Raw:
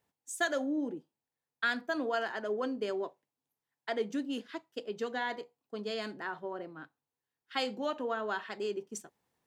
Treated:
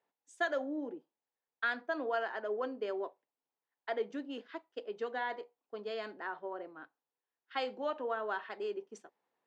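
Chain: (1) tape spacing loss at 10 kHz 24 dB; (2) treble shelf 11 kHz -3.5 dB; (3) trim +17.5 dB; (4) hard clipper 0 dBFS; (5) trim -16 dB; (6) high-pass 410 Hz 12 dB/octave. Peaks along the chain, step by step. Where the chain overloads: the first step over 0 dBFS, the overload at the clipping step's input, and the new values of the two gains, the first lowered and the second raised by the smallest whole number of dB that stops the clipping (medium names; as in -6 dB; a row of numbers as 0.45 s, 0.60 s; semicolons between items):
-21.0 dBFS, -21.0 dBFS, -3.5 dBFS, -3.5 dBFS, -19.5 dBFS, -21.0 dBFS; nothing clips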